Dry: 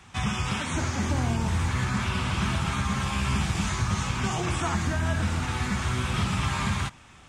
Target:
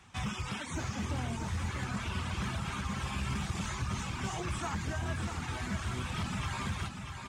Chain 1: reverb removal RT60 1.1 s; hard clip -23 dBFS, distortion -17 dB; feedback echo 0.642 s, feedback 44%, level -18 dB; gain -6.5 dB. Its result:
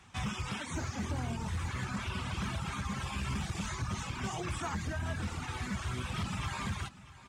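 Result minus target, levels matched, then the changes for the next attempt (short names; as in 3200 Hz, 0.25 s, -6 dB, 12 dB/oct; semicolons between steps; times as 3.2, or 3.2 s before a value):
echo-to-direct -11 dB
change: feedback echo 0.642 s, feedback 44%, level -7 dB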